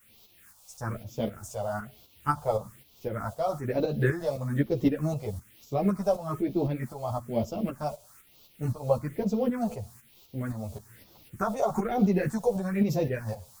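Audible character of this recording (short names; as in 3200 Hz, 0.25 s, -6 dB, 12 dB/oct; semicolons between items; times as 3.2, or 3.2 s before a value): a quantiser's noise floor 10-bit, dither triangular; phasing stages 4, 1.1 Hz, lowest notch 280–1700 Hz; tremolo saw up 3.9 Hz, depth 60%; a shimmering, thickened sound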